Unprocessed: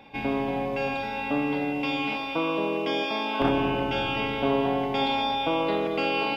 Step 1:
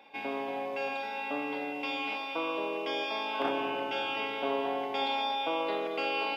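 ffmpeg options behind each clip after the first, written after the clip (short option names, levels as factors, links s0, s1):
-af "highpass=400,volume=0.596"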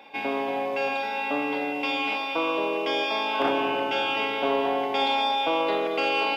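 -af "asoftclip=type=tanh:threshold=0.106,volume=2.37"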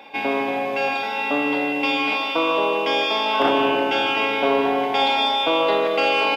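-af "aecho=1:1:152:0.335,volume=1.88"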